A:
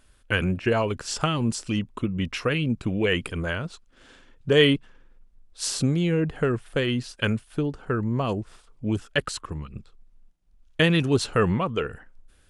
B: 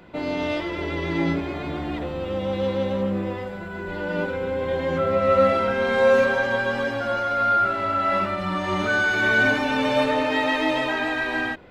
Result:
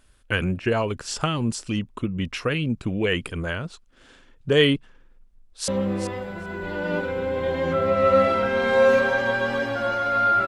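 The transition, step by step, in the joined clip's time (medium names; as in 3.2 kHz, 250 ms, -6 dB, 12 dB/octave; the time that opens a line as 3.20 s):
A
5.29–5.68 s: echo throw 390 ms, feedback 10%, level -11 dB
5.68 s: go over to B from 2.93 s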